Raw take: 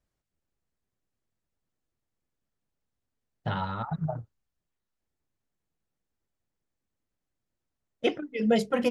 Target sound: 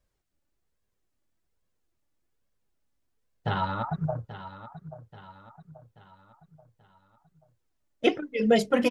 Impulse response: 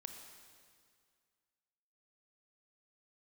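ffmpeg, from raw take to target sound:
-filter_complex "[0:a]flanger=delay=1.8:depth=1.7:regen=48:speed=1.2:shape=sinusoidal,asplit=2[s0][s1];[s1]aecho=0:1:833|1666|2499|3332:0.211|0.0972|0.0447|0.0206[s2];[s0][s2]amix=inputs=2:normalize=0,volume=2.37"

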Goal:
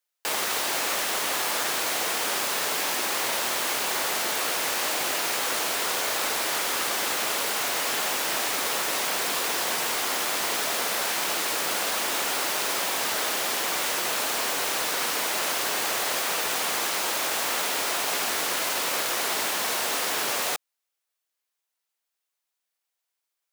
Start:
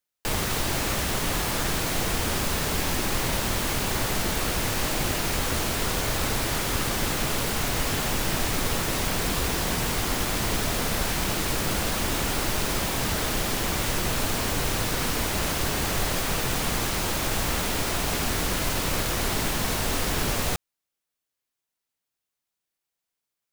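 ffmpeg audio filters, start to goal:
-af "highpass=520,volume=1.26"

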